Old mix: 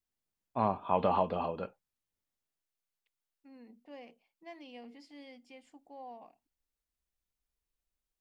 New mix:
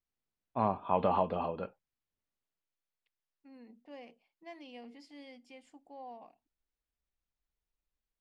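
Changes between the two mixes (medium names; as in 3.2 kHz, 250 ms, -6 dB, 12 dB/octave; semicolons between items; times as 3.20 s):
second voice: remove distance through air 130 m; master: add distance through air 120 m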